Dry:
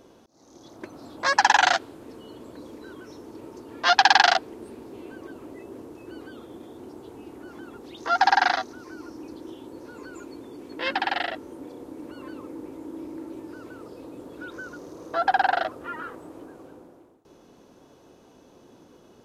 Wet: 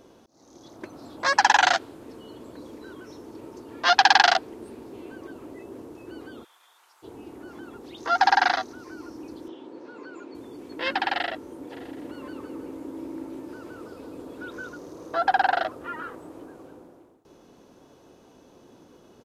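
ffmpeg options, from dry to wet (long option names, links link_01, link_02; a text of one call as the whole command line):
ffmpeg -i in.wav -filter_complex "[0:a]asplit=3[link_01][link_02][link_03];[link_01]afade=type=out:start_time=6.43:duration=0.02[link_04];[link_02]highpass=frequency=1100:width=0.5412,highpass=frequency=1100:width=1.3066,afade=type=in:start_time=6.43:duration=0.02,afade=type=out:start_time=7.02:duration=0.02[link_05];[link_03]afade=type=in:start_time=7.02:duration=0.02[link_06];[link_04][link_05][link_06]amix=inputs=3:normalize=0,asettb=1/sr,asplit=3[link_07][link_08][link_09];[link_07]atrim=end=9.484[link_10];[link_08]atrim=start=9.48:end=10.35,asetpts=PTS-STARTPTS,afade=type=in:duration=0.004:curve=qsin,afade=type=out:start_time=0.866:duration=0.004:curve=qsin,highpass=220,lowpass=4100[link_11];[link_09]atrim=start=10.346[link_12];[link_10][link_11]acrossfade=duration=0.004:curve1=hsin:curve2=qsin[link_13];[link_13][link_12]acrossfade=duration=0.004:curve1=qsin:curve2=hsin,asplit=3[link_14][link_15][link_16];[link_14]afade=type=out:start_time=11.7:duration=0.02[link_17];[link_15]aecho=1:1:163|326|489|652|815|978:0.501|0.251|0.125|0.0626|0.0313|0.0157,afade=type=in:start_time=11.7:duration=0.02,afade=type=out:start_time=14.69:duration=0.02[link_18];[link_16]afade=type=in:start_time=14.69:duration=0.02[link_19];[link_17][link_18][link_19]amix=inputs=3:normalize=0" out.wav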